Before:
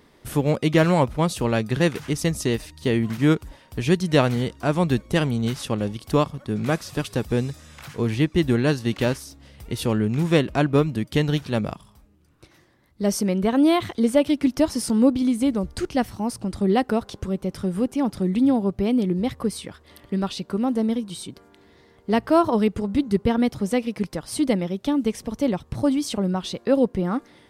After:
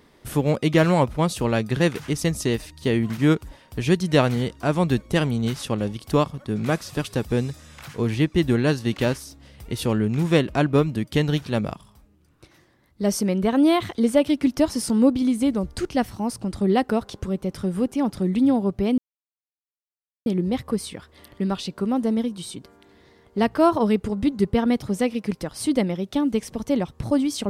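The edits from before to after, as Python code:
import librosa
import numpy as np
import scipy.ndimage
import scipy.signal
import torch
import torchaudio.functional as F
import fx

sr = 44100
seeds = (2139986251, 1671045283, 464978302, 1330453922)

y = fx.edit(x, sr, fx.insert_silence(at_s=18.98, length_s=1.28), tone=tone)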